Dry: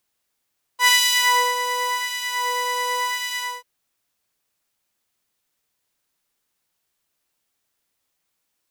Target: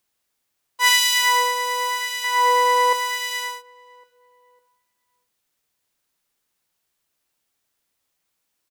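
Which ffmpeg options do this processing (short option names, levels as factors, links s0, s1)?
-filter_complex "[0:a]asettb=1/sr,asplit=3[s0][s1][s2];[s0]atrim=end=2.244[s3];[s1]atrim=start=2.24:end=2.93,asetpts=PTS-STARTPTS,afade=t=in:d=0.004:c=qsin,afade=t=out:st=0.686:d=0.004:c=qsin,equalizer=f=640:t=o:w=2.4:g=10.5[s4];[s2]atrim=start=2.926[s5];[s3][s4]acrossfade=d=0.004:c1=hsin:c2=qsin[s6];[s6][s5]acrossfade=d=0.004:c1=qsin:c2=hsin,asplit=2[s7][s8];[s8]adelay=554,lowpass=f=1100:p=1,volume=0.0794,asplit=2[s9][s10];[s10]adelay=554,lowpass=f=1100:p=1,volume=0.49,asplit=2[s11][s12];[s12]adelay=554,lowpass=f=1100:p=1,volume=0.49[s13];[s7][s9][s11][s13]amix=inputs=4:normalize=0"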